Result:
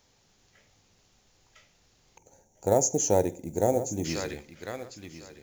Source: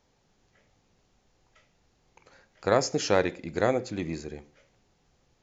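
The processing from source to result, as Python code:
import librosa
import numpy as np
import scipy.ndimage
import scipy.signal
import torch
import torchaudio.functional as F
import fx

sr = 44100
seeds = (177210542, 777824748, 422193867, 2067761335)

p1 = fx.quant_float(x, sr, bits=4)
p2 = fx.high_shelf(p1, sr, hz=2500.0, db=10.5)
p3 = p2 + fx.echo_feedback(p2, sr, ms=1052, feedback_pct=15, wet_db=-13.5, dry=0)
p4 = fx.spec_box(p3, sr, start_s=2.18, length_s=1.87, low_hz=960.0, high_hz=5600.0, gain_db=-19)
y = fx.peak_eq(p4, sr, hz=96.0, db=6.0, octaves=0.23)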